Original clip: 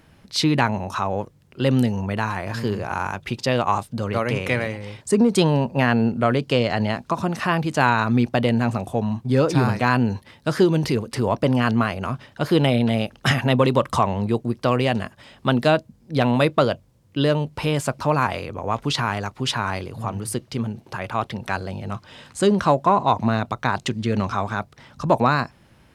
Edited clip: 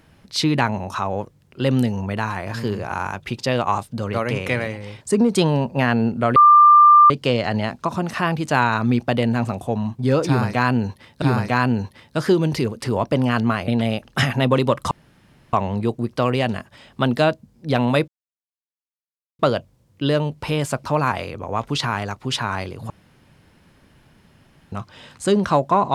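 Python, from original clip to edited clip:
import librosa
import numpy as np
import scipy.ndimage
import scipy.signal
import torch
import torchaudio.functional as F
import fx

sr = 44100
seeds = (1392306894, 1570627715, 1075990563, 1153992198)

y = fx.edit(x, sr, fx.insert_tone(at_s=6.36, length_s=0.74, hz=1190.0, db=-6.5),
    fx.repeat(start_s=9.53, length_s=0.95, count=2),
    fx.cut(start_s=11.99, length_s=0.77),
    fx.insert_room_tone(at_s=13.99, length_s=0.62),
    fx.insert_silence(at_s=16.54, length_s=1.31),
    fx.room_tone_fill(start_s=20.05, length_s=1.82), tone=tone)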